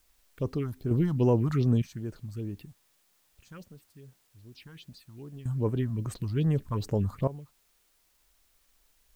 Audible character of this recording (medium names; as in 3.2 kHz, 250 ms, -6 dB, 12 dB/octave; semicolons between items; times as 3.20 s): random-step tremolo 1.1 Hz, depth 95%; phasing stages 4, 2.5 Hz, lowest notch 390–4000 Hz; a quantiser's noise floor 12-bit, dither triangular